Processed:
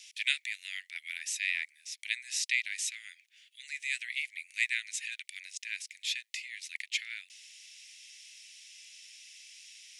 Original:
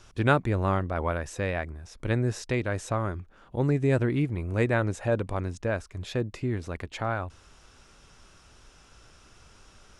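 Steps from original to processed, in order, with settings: steep high-pass 2 kHz 72 dB/octave; trim +8.5 dB

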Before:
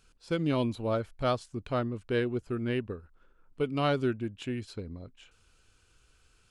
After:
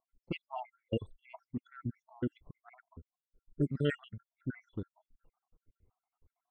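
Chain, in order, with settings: random holes in the spectrogram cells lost 74%; formant shift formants -3 st; level-controlled noise filter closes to 460 Hz, open at -30 dBFS

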